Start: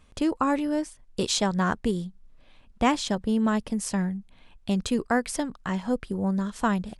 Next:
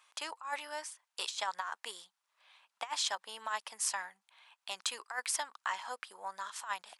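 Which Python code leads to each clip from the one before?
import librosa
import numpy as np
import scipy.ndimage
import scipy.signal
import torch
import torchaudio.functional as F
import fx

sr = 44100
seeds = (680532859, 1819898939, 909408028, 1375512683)

y = scipy.signal.sosfilt(scipy.signal.cheby1(3, 1.0, 920.0, 'highpass', fs=sr, output='sos'), x)
y = fx.over_compress(y, sr, threshold_db=-32.0, ratio=-0.5)
y = y * 10.0 ** (-2.5 / 20.0)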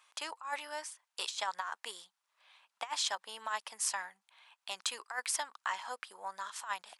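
y = x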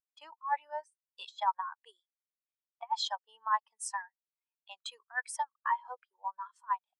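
y = fx.spectral_expand(x, sr, expansion=2.5)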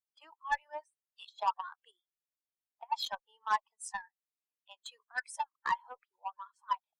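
y = fx.spec_quant(x, sr, step_db=30)
y = fx.cheby_harmonics(y, sr, harmonics=(7,), levels_db=(-24,), full_scale_db=-17.5)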